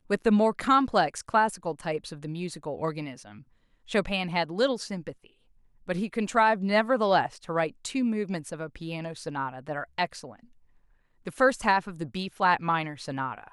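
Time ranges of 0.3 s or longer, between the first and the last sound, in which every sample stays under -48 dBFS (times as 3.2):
3.43–3.86
5.27–5.87
10.46–11.25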